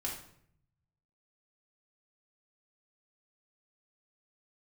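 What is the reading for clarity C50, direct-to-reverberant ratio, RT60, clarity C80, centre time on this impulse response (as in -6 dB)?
5.0 dB, -3.5 dB, 0.65 s, 9.0 dB, 33 ms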